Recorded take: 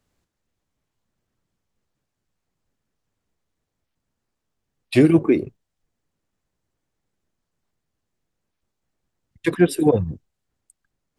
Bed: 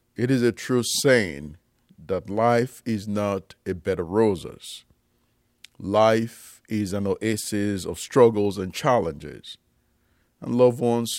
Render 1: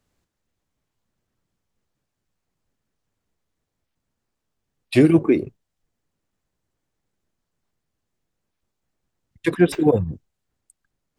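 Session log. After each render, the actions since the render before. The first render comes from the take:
0:09.72–0:10.13: linearly interpolated sample-rate reduction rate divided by 4×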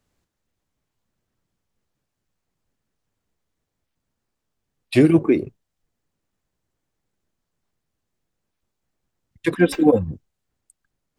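0:09.58–0:10.08: comb filter 3.8 ms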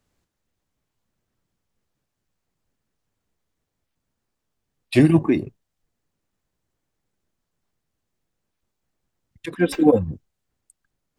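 0:04.99–0:05.44: comb filter 1.1 ms, depth 62%
0:09.46–0:09.88: fade in equal-power, from −14 dB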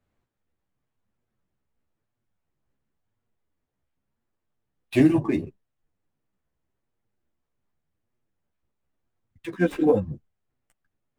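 running median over 9 samples
multi-voice chorus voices 2, 0.92 Hz, delay 12 ms, depth 3.8 ms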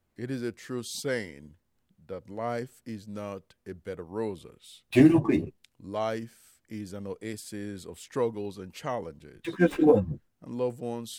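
mix in bed −12.5 dB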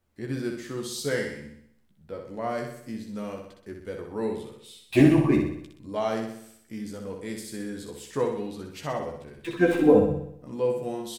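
double-tracking delay 14 ms −5 dB
on a send: flutter between parallel walls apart 10.7 metres, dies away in 0.69 s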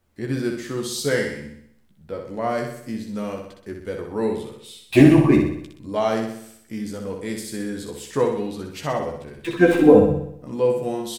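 level +6 dB
brickwall limiter −1 dBFS, peak gain reduction 1.5 dB

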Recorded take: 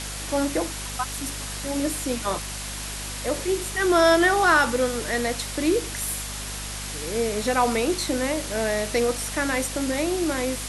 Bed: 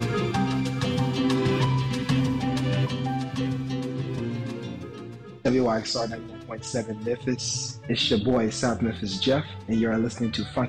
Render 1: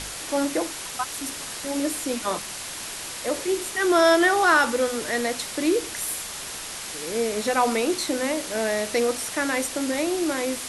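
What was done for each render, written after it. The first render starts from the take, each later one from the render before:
hum removal 50 Hz, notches 5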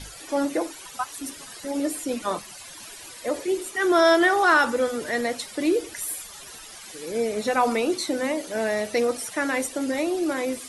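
broadband denoise 14 dB, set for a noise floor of −35 dBFS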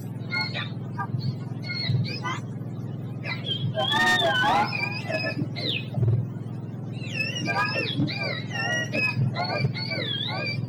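frequency axis turned over on the octave scale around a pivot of 1,100 Hz
hard clipping −17.5 dBFS, distortion −13 dB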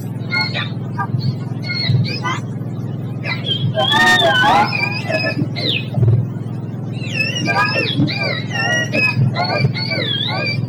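level +9.5 dB

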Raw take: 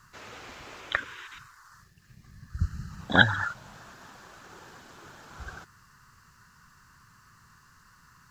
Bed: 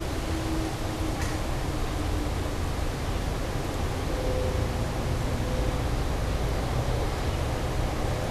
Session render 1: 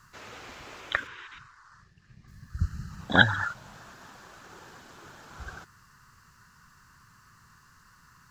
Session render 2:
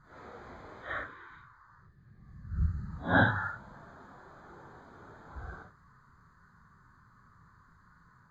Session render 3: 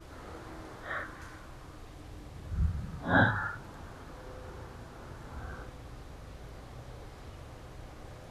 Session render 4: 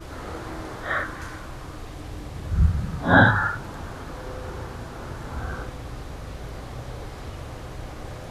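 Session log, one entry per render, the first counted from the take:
0:01.07–0:02.28: high-frequency loss of the air 99 metres
random phases in long frames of 200 ms; moving average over 16 samples
mix in bed −19.5 dB
level +11 dB; brickwall limiter −3 dBFS, peak gain reduction 2.5 dB

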